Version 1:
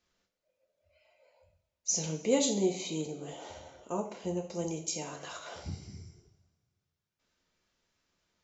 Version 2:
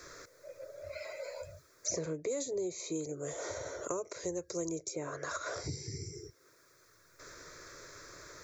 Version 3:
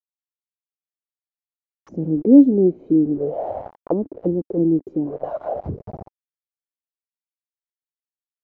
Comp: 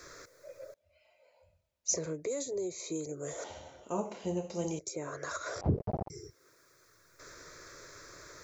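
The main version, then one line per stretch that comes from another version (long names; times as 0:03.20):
2
0:00.74–0:01.94: punch in from 1
0:03.44–0:04.79: punch in from 1
0:05.61–0:06.10: punch in from 3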